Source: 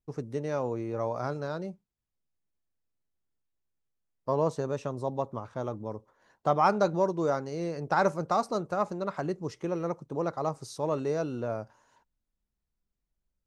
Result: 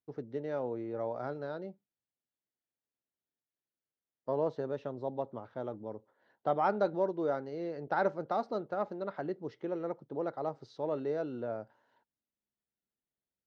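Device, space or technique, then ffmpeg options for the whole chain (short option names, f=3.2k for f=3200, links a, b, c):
kitchen radio: -af "highpass=160,equalizer=f=170:t=q:w=4:g=-6,equalizer=f=1.1k:t=q:w=4:g=-9,equalizer=f=2.5k:t=q:w=4:g=-8,lowpass=f=3.7k:w=0.5412,lowpass=f=3.7k:w=1.3066,volume=-3.5dB"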